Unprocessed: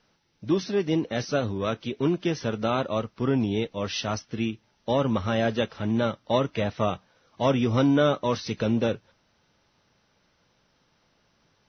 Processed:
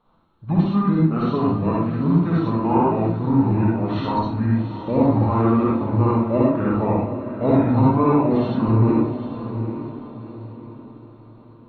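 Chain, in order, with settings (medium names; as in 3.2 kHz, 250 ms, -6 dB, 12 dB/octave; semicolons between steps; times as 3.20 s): formant shift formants -6 st; resonant high shelf 1.5 kHz -8.5 dB, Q 3; echo that smears into a reverb 779 ms, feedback 40%, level -10 dB; reverberation RT60 0.50 s, pre-delay 53 ms, DRR -4.5 dB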